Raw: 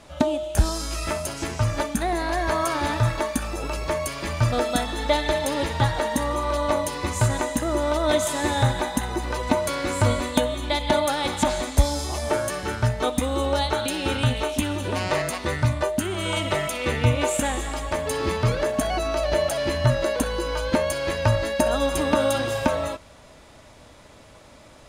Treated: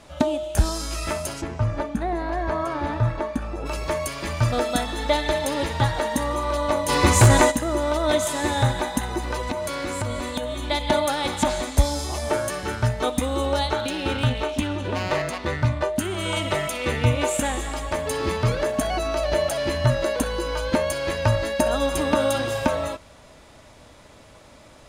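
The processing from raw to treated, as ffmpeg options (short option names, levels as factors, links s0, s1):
-filter_complex "[0:a]asplit=3[s0][s1][s2];[s0]afade=t=out:st=1.4:d=0.02[s3];[s1]lowpass=f=1100:p=1,afade=t=in:st=1.4:d=0.02,afade=t=out:st=3.65:d=0.02[s4];[s2]afade=t=in:st=3.65:d=0.02[s5];[s3][s4][s5]amix=inputs=3:normalize=0,asplit=3[s6][s7][s8];[s6]afade=t=out:st=6.88:d=0.02[s9];[s7]aeval=exprs='0.422*sin(PI/2*2.24*val(0)/0.422)':c=same,afade=t=in:st=6.88:d=0.02,afade=t=out:st=7.5:d=0.02[s10];[s8]afade=t=in:st=7.5:d=0.02[s11];[s9][s10][s11]amix=inputs=3:normalize=0,asettb=1/sr,asplit=3[s12][s13][s14];[s12]atrim=end=9.504[s15];[s13]atrim=start=9.5:end=10.71,asetpts=PTS-STARTPTS,afade=t=in:d=0.004:c=qsin,afade=t=out:st=1.206:d=0.004:c=qsin,acompressor=threshold=0.0631:ratio=4:attack=3.2:release=140:knee=1:detection=peak[s16];[s14]atrim=start=10.706[s17];[s15][s16]acrossfade=d=0.004:c1=hsin:c2=qsin[s18];[s18][s17]acrossfade=d=0.004:c1=qsin:c2=hsin,asettb=1/sr,asplit=3[s19][s20][s21];[s19]atrim=end=13.734[s22];[s20]atrim=start=13.73:end=15.96,asetpts=PTS-STARTPTS,afade=t=in:d=0.004:c=qsin,afade=t=out:st=2.226:d=0.004:c=qsin,adynamicsmooth=sensitivity=3.5:basefreq=4300[s23];[s21]atrim=start=15.956[s24];[s22][s23]acrossfade=d=0.004:c1=hsin:c2=qsin[s25];[s25][s24]acrossfade=d=0.004:c1=qsin:c2=hsin"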